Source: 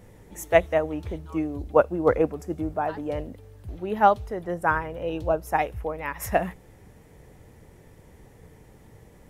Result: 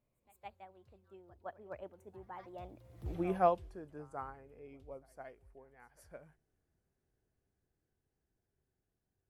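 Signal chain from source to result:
source passing by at 0:03.15, 59 m/s, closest 6.5 metres
echo ahead of the sound 164 ms −20 dB
level −2.5 dB

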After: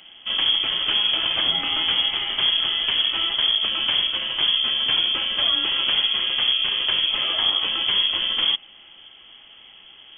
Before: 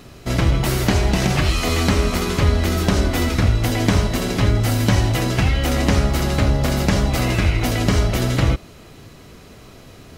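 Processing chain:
in parallel at −7.5 dB: wrap-around overflow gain 9 dB
on the sum: voice inversion scrambler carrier 3,300 Hz
level −8 dB

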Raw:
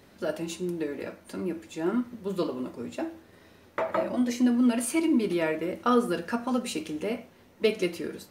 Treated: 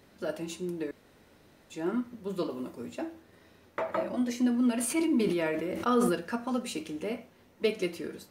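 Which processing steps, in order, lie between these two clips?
0:00.91–0:01.70: fill with room tone
0:02.50–0:02.92: high-shelf EQ 8,400 Hz +8 dB
0:04.73–0:06.15: level that may fall only so fast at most 29 dB per second
level −3.5 dB

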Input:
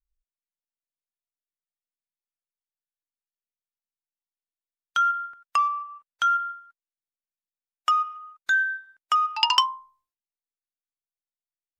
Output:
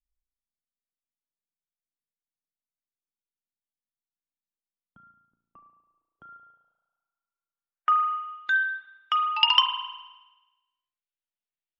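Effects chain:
spring reverb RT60 1.1 s, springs 35 ms, chirp 45 ms, DRR 6 dB
low-pass filter sweep 240 Hz → 3,000 Hz, 0:05.83–0:08.45
level −5 dB

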